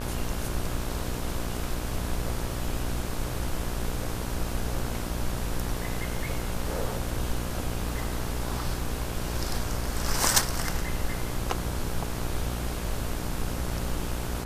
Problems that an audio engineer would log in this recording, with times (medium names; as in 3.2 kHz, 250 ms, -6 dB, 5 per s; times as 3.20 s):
buzz 60 Hz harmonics 28 -34 dBFS